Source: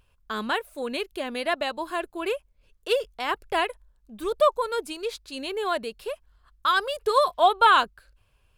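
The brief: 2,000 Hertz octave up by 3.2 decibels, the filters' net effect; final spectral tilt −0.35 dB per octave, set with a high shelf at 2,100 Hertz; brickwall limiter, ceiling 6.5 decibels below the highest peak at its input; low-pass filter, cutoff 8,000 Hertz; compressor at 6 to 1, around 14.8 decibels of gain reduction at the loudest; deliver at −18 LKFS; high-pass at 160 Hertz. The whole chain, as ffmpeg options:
ffmpeg -i in.wav -af "highpass=160,lowpass=8000,equalizer=frequency=2000:width_type=o:gain=9,highshelf=frequency=2100:gain=-8,acompressor=threshold=-29dB:ratio=6,volume=18dB,alimiter=limit=-7dB:level=0:latency=1" out.wav

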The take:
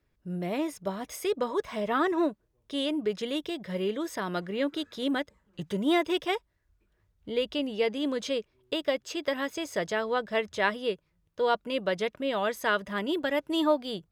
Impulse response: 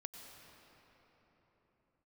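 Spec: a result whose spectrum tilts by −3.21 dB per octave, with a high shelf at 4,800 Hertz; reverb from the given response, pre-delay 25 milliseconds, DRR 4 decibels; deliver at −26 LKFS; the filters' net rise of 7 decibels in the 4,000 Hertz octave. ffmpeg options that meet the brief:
-filter_complex "[0:a]equalizer=frequency=4000:width_type=o:gain=6.5,highshelf=frequency=4800:gain=6.5,asplit=2[link_01][link_02];[1:a]atrim=start_sample=2205,adelay=25[link_03];[link_02][link_03]afir=irnorm=-1:irlink=0,volume=0dB[link_04];[link_01][link_04]amix=inputs=2:normalize=0,volume=1.5dB"

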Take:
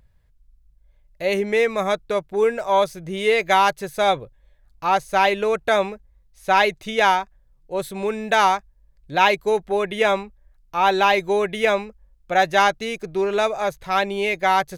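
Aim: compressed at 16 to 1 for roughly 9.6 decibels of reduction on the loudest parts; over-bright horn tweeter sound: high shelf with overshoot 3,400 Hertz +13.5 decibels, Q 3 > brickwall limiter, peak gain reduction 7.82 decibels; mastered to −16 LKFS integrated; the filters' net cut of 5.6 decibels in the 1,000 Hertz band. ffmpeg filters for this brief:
ffmpeg -i in.wav -af "equalizer=frequency=1000:width_type=o:gain=-6,acompressor=threshold=-24dB:ratio=16,highshelf=frequency=3400:width_type=q:width=3:gain=13.5,volume=12.5dB,alimiter=limit=-4dB:level=0:latency=1" out.wav

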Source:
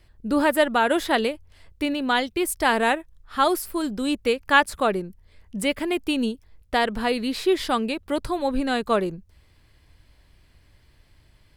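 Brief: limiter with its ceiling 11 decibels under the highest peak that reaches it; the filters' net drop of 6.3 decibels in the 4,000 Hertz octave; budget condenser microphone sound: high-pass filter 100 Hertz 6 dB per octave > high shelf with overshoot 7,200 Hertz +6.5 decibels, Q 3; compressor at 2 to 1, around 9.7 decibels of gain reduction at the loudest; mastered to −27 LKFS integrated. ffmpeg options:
ffmpeg -i in.wav -af "equalizer=frequency=4000:width_type=o:gain=-7,acompressor=threshold=-30dB:ratio=2,alimiter=level_in=1.5dB:limit=-24dB:level=0:latency=1,volume=-1.5dB,highpass=frequency=100:poles=1,highshelf=frequency=7200:width_type=q:width=3:gain=6.5,volume=7dB" out.wav

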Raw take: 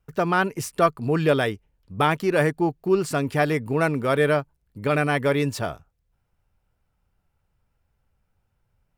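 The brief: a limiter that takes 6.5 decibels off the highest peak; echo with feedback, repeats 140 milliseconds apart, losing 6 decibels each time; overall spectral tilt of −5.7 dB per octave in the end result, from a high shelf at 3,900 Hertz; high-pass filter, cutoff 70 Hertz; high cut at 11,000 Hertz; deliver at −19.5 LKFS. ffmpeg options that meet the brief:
ffmpeg -i in.wav -af "highpass=70,lowpass=11000,highshelf=frequency=3900:gain=-3.5,alimiter=limit=-12.5dB:level=0:latency=1,aecho=1:1:140|280|420|560|700|840:0.501|0.251|0.125|0.0626|0.0313|0.0157,volume=4.5dB" out.wav

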